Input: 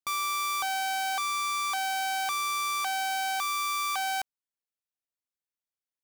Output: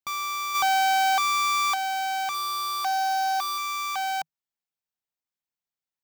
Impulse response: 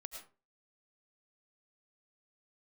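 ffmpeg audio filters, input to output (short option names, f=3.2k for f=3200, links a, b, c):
-filter_complex "[0:a]equalizer=f=160:t=o:w=0.33:g=7,equalizer=f=500:t=o:w=0.33:g=-4,equalizer=f=800:t=o:w=0.33:g=4,equalizer=f=10k:t=o:w=0.33:g=-11,asplit=3[a][b][c];[a]afade=t=out:st=0.54:d=0.02[d];[b]acontrast=58,afade=t=in:st=0.54:d=0.02,afade=t=out:st=1.73:d=0.02[e];[c]afade=t=in:st=1.73:d=0.02[f];[d][e][f]amix=inputs=3:normalize=0,asettb=1/sr,asplit=3[g][h][i];[g]atrim=end=2.344[j];[h]atrim=start=2.34:end=3.58,asetpts=PTS-STARTPTS,afade=t=in:d=0.004:c=qsin,afade=t=out:st=1.236:d=0.004:c=qsin,aecho=1:1:2.8:0.66,atrim=end_sample=54684[k];[i]atrim=start=3.576[l];[j][k]acrossfade=d=0.004:c1=hsin:c2=qsin[m];[m][l]acrossfade=d=0.004:c1=qsin:c2=hsin"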